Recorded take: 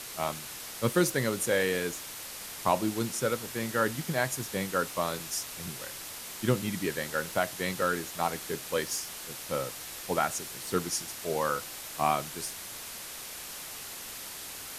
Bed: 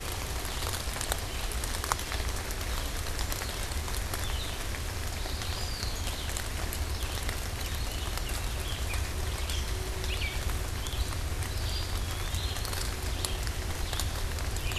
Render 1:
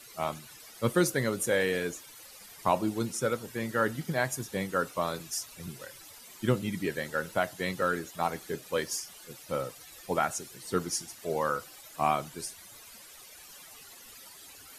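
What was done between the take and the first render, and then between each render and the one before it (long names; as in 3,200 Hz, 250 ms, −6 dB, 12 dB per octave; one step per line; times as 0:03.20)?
broadband denoise 14 dB, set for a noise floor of −42 dBFS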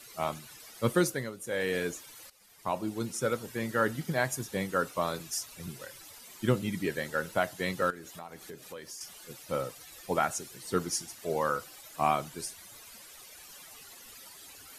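0:00.96–0:01.79: duck −12 dB, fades 0.37 s
0:02.30–0:03.36: fade in, from −15 dB
0:07.90–0:09.01: downward compressor 4 to 1, threshold −42 dBFS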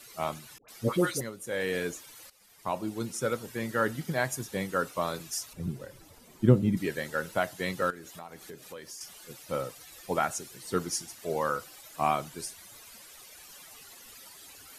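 0:00.58–0:01.21: all-pass dispersion highs, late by 104 ms, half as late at 1,000 Hz
0:05.53–0:06.77: tilt shelving filter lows +9 dB, about 760 Hz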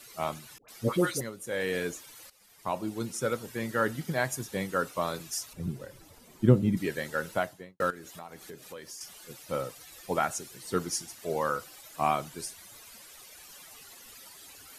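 0:07.32–0:07.80: fade out and dull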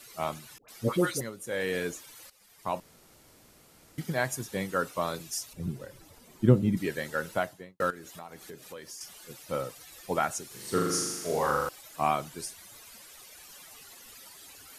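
0:02.80–0:03.98: fill with room tone
0:05.15–0:05.62: parametric band 1,300 Hz −4.5 dB 1.2 octaves
0:10.47–0:11.69: flutter between parallel walls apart 6.9 metres, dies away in 1.1 s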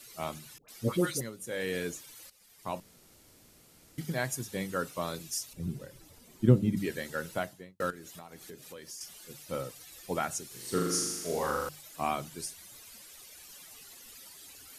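parametric band 970 Hz −5.5 dB 2.4 octaves
mains-hum notches 50/100/150/200 Hz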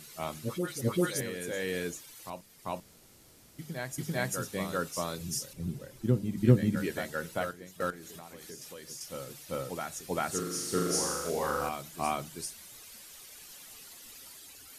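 backwards echo 393 ms −5.5 dB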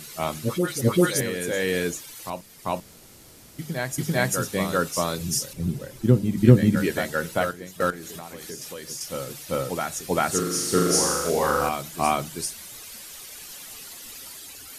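level +9 dB
brickwall limiter −1 dBFS, peak gain reduction 2 dB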